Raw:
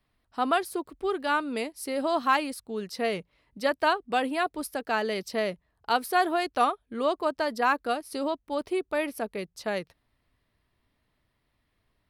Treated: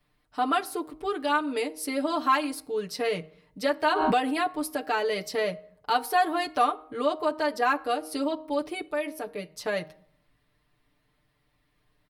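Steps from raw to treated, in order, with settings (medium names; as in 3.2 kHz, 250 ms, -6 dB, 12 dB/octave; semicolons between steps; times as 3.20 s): comb 6.7 ms, depth 100%; de-hum 156.3 Hz, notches 14; in parallel at +1 dB: compression, threshold -28 dBFS, peak gain reduction 14 dB; 8.86–9.51 s: on the sum: feedback comb 200 Hz, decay 0.16 s, harmonics all, mix 50%; on a send at -18.5 dB: reverberation RT60 0.60 s, pre-delay 4 ms; 3.86–4.41 s: on the sum: swell ahead of each attack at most 24 dB/s; trim -6 dB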